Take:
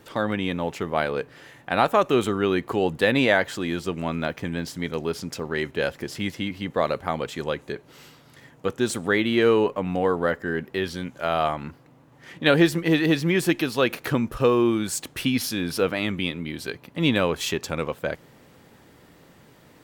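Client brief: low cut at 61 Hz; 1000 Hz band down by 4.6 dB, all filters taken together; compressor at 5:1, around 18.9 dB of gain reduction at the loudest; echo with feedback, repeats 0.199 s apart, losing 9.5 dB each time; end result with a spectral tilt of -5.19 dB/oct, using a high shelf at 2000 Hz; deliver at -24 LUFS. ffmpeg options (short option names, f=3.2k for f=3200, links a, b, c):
-af "highpass=61,equalizer=f=1k:t=o:g=-4.5,highshelf=f=2k:g=-7.5,acompressor=threshold=-37dB:ratio=5,aecho=1:1:199|398|597|796:0.335|0.111|0.0365|0.012,volume=16dB"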